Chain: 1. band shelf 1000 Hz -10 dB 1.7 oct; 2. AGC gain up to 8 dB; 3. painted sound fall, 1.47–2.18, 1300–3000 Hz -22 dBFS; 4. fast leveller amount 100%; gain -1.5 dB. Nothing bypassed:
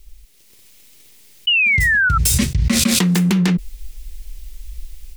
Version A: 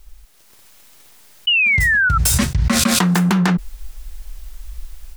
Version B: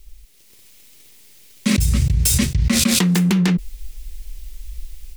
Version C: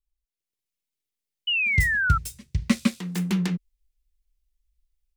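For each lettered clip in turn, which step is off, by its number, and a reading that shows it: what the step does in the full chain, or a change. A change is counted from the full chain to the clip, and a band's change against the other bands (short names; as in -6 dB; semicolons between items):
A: 1, 1 kHz band +3.5 dB; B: 3, 2 kHz band -13.0 dB; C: 4, crest factor change +3.0 dB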